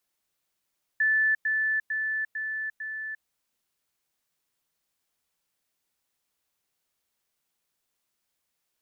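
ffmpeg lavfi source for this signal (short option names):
-f lavfi -i "aevalsrc='pow(10,(-20-3*floor(t/0.45))/20)*sin(2*PI*1750*t)*clip(min(mod(t,0.45),0.35-mod(t,0.45))/0.005,0,1)':d=2.25:s=44100"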